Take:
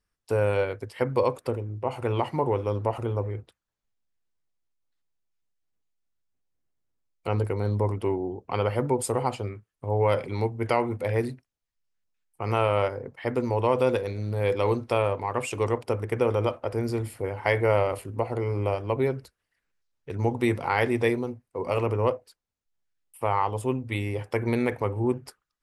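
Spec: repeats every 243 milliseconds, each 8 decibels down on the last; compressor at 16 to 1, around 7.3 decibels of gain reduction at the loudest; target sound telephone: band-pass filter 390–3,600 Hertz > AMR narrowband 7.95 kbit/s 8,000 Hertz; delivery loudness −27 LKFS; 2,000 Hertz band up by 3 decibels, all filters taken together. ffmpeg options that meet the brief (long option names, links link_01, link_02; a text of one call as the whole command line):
ffmpeg -i in.wav -af "equalizer=frequency=2000:width_type=o:gain=4,acompressor=threshold=-24dB:ratio=16,highpass=390,lowpass=3600,aecho=1:1:243|486|729|972|1215:0.398|0.159|0.0637|0.0255|0.0102,volume=7.5dB" -ar 8000 -c:a libopencore_amrnb -b:a 7950 out.amr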